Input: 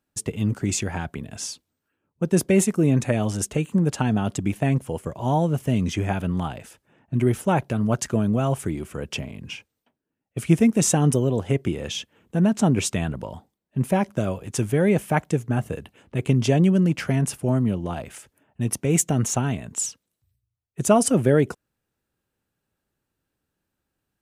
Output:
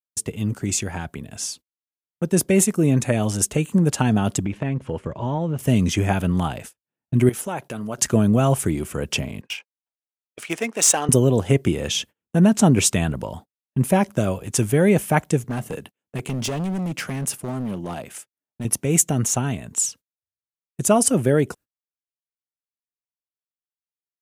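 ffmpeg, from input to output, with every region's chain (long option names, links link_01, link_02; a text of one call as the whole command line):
ffmpeg -i in.wav -filter_complex "[0:a]asettb=1/sr,asplit=3[link_01][link_02][link_03];[link_01]atrim=end=4.454[link_04];[link_02]atrim=start=4.45:end=5.59,asetpts=PTS-STARTPTS,afade=type=in:duration=0.004:curve=qsin,afade=type=out:start_time=1.136:duration=0.004:curve=qsin,lowpass=3100,bandreject=frequency=730:width=7.1,acompressor=threshold=-24dB:ratio=4:attack=3.2:release=140:knee=1:detection=peak[link_05];[link_03]atrim=start=5.586[link_06];[link_04][link_05]acrossfade=duration=0.004:curve1=hsin:curve2=qsin[link_07];[link_07][link_06]acrossfade=duration=0.004:curve1=qsin:curve2=hsin,asettb=1/sr,asplit=3[link_08][link_09][link_10];[link_08]atrim=end=7.294[link_11];[link_09]atrim=start=7.29:end=7.98,asetpts=PTS-STARTPTS,afade=type=in:duration=0.004:curve=qsin,afade=type=out:start_time=0.686:duration=0.004:curve=qsin,highpass=frequency=350:poles=1,acompressor=threshold=-35dB:ratio=2:attack=3.2:release=140:knee=1:detection=peak[link_12];[link_10]atrim=start=7.976[link_13];[link_11][link_12]acrossfade=duration=0.004:curve1=hsin:curve2=qsin[link_14];[link_14][link_13]acrossfade=duration=0.004:curve1=qsin:curve2=hsin,asettb=1/sr,asplit=3[link_15][link_16][link_17];[link_15]atrim=end=9.414[link_18];[link_16]atrim=start=9.41:end=11.09,asetpts=PTS-STARTPTS,afade=type=in:duration=0.004:curve=qsin,afade=type=out:start_time=1.676:duration=0.004:curve=qsin,highpass=670,adynamicsmooth=sensitivity=8:basefreq=3800[link_19];[link_17]atrim=start=11.086[link_20];[link_18][link_19]acrossfade=duration=0.004:curve1=hsin:curve2=qsin[link_21];[link_21][link_20]acrossfade=duration=0.004:curve1=qsin:curve2=hsin,asettb=1/sr,asplit=3[link_22][link_23][link_24];[link_22]atrim=end=15.444[link_25];[link_23]atrim=start=15.44:end=18.65,asetpts=PTS-STARTPTS,afade=type=in:duration=0.004:curve=qsin,afade=type=out:start_time=3.206:duration=0.004:curve=qsin,highpass=130,acompressor=threshold=-23dB:ratio=2:attack=3.2:release=140:knee=1:detection=peak,asoftclip=type=hard:threshold=-24dB[link_26];[link_24]atrim=start=18.646[link_27];[link_25][link_26]acrossfade=duration=0.004:curve1=hsin:curve2=qsin[link_28];[link_28][link_27]acrossfade=duration=0.004:curve1=qsin:curve2=hsin,agate=range=-36dB:threshold=-42dB:ratio=16:detection=peak,highshelf=frequency=6500:gain=8,dynaudnorm=framelen=940:gausssize=7:maxgain=11.5dB,volume=-1dB" out.wav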